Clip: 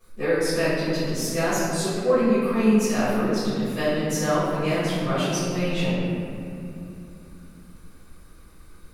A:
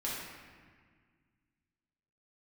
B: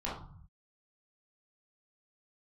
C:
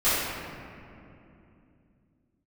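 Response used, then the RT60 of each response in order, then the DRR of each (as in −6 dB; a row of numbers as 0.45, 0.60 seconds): C; 1.7, 0.50, 2.8 seconds; −7.0, −8.0, −15.0 decibels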